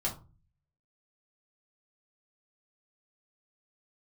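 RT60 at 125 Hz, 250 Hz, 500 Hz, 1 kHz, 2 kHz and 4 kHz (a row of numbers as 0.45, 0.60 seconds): 0.75, 0.55, 0.35, 0.30, 0.25, 0.20 seconds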